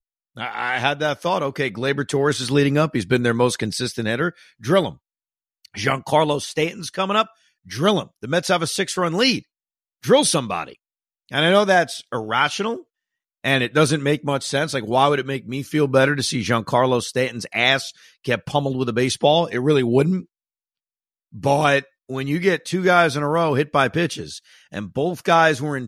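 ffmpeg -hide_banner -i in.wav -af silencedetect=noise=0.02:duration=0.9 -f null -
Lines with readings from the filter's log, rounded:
silence_start: 20.21
silence_end: 21.34 | silence_duration: 1.13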